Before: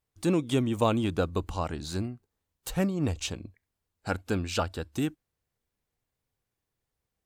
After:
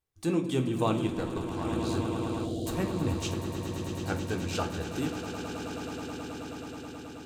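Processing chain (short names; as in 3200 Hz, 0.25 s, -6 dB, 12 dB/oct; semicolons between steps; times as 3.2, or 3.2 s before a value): swelling echo 0.107 s, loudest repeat 8, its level -12 dB; 1.07–1.65 tube stage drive 20 dB, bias 0.75; 2.44–2.66 spectral gain 790–2800 Hz -28 dB; reverb RT60 0.60 s, pre-delay 3 ms, DRR 4.5 dB; gain -4.5 dB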